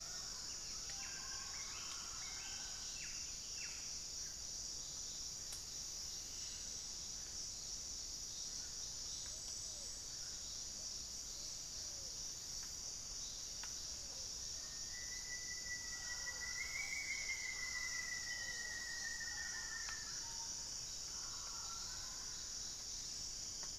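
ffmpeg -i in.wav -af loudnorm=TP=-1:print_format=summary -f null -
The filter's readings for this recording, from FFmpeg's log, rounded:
Input Integrated:    -44.1 LUFS
Input True Peak:     -30.9 dBTP
Input LRA:             2.7 LU
Input Threshold:     -54.1 LUFS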